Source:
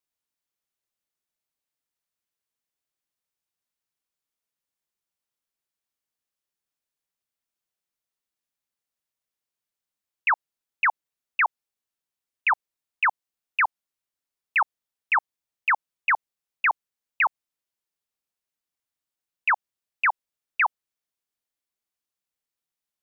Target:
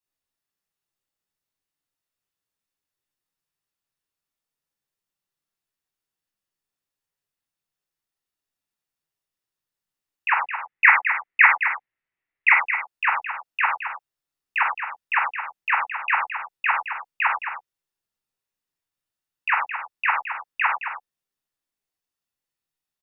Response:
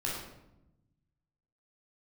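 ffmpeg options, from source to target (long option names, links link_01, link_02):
-filter_complex "[0:a]asettb=1/sr,asplit=3[link_01][link_02][link_03];[link_01]atrim=end=10.324[link_04];[link_02]atrim=start=10.32:end=12.49,asetpts=PTS-STARTPTS,afade=type=in:duration=0.004:curve=qsin,afade=type=out:start_time=2.166:duration=0.004:curve=qsin,lowpass=frequency=2100:width_type=q:width=4.6[link_05];[link_03]atrim=start=12.486[link_06];[link_04][link_05]acrossfade=duration=0.004:curve1=hsin:curve2=qsin[link_07];[link_07][link_06]acrossfade=duration=0.004:curve1=qsin:curve2=hsin,aecho=1:1:217:0.355[link_08];[1:a]atrim=start_sample=2205,afade=type=out:start_time=0.16:duration=0.01,atrim=end_sample=7497[link_09];[link_08][link_09]afir=irnorm=-1:irlink=0,volume=-3dB"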